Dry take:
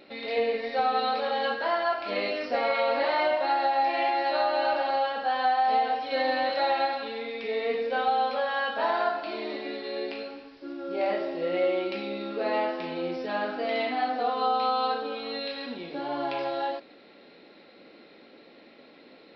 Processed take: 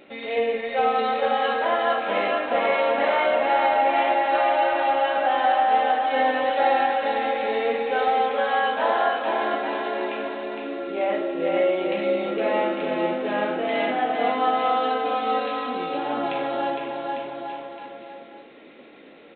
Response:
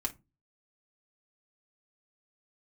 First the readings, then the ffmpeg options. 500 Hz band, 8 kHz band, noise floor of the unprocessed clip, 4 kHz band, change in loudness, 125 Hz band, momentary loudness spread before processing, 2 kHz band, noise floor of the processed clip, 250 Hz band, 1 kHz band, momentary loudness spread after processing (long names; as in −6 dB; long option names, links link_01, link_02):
+5.5 dB, can't be measured, −53 dBFS, +1.5 dB, +5.0 dB, +5.5 dB, 9 LU, +5.0 dB, −46 dBFS, +5.5 dB, +5.0 dB, 10 LU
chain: -af "aresample=8000,aresample=44100,aecho=1:1:460|851|1183|1466|1706:0.631|0.398|0.251|0.158|0.1,volume=3dB"